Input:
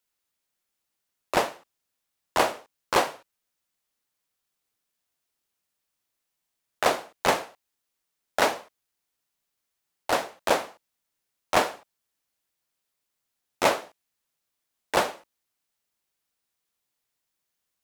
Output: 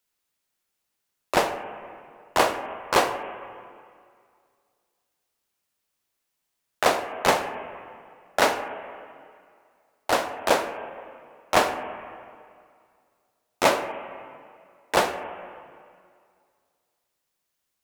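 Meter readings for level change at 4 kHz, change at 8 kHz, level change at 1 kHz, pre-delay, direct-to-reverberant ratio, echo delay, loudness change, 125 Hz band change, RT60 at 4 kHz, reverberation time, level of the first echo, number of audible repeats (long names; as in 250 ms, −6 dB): +2.0 dB, +2.0 dB, +2.5 dB, 22 ms, 8.0 dB, no echo audible, +1.5 dB, +2.5 dB, 1.9 s, 2.2 s, no echo audible, no echo audible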